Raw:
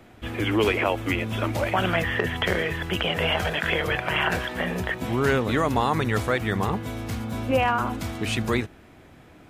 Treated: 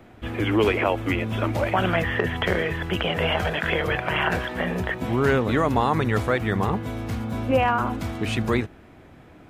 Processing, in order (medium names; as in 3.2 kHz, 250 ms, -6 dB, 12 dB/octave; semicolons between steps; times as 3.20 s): peaking EQ 11 kHz -7 dB 2.9 oct; trim +2 dB